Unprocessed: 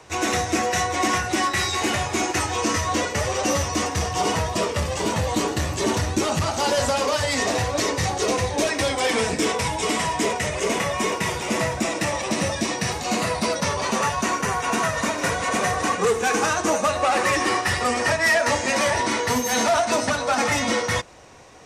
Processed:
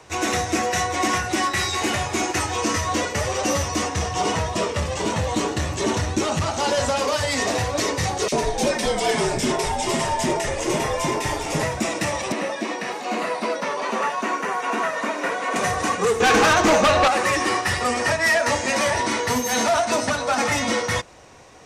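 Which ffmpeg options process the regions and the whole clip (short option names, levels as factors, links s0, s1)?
-filter_complex "[0:a]asettb=1/sr,asplit=3[s0][s1][s2];[s0]atrim=end=3.864[s3];[s1]atrim=start=3.86:end=6.99,asetpts=PTS-STARTPTS,afade=t=in:d=0.004:c=qsin,afade=t=out:st=3.126:d=0.004:c=qsin,lowpass=9300,bandreject=f=4700:w=21[s4];[s2]atrim=start=6.986[s5];[s3][s4]acrossfade=d=0.004:c1=hsin:c2=qsin[s6];[s6][s5]acrossfade=d=0.004:c1=qsin:c2=hsin,asettb=1/sr,asplit=3[s7][s8][s9];[s7]atrim=end=8.284[s10];[s8]atrim=start=8.28:end=11.63,asetpts=PTS-STARTPTS,afade=t=in:d=0.004:c=qsin,afade=t=out:st=3.346:d=0.004:c=qsin,equalizer=f=780:t=o:w=0.72:g=4,acrossover=split=2100[s11][s12];[s11]adelay=40[s13];[s13][s12]amix=inputs=2:normalize=0,atrim=end_sample=147735,afreqshift=-65[s14];[s9]atrim=start=11.626[s15];[s10][s14]acrossfade=d=0.004:c1=hsin:c2=qsin[s16];[s16][s15]acrossfade=d=0.004:c1=qsin:c2=hsin,asettb=1/sr,asplit=3[s17][s18][s19];[s17]atrim=end=12.324[s20];[s18]atrim=start=12.32:end=15.56,asetpts=PTS-STARTPTS,afade=t=in:d=0.004:c=qsin,afade=t=out:st=3.236:d=0.004:c=qsin,highpass=f=240:w=0.5412,highpass=f=240:w=1.3066,acrossover=split=3100[s21][s22];[s22]acompressor=threshold=0.00794:ratio=4:attack=1:release=60[s23];[s21][s23]amix=inputs=2:normalize=0[s24];[s19]atrim=start=15.556[s25];[s20][s24]acrossfade=d=0.004:c1=hsin:c2=qsin[s26];[s26][s25]acrossfade=d=0.004:c1=qsin:c2=hsin,asettb=1/sr,asplit=3[s27][s28][s29];[s27]atrim=end=16.204[s30];[s28]atrim=start=16.2:end=17.08,asetpts=PTS-STARTPTS,afade=t=in:d=0.004:c=qsin,afade=t=out:st=0.876:d=0.004:c=qsin,lowpass=5000,aeval=exprs='0.237*sin(PI/2*2*val(0)/0.237)':c=same[s31];[s29]atrim=start=17.076[s32];[s30][s31]acrossfade=d=0.004:c1=hsin:c2=qsin[s33];[s33][s32]acrossfade=d=0.004:c1=qsin:c2=hsin"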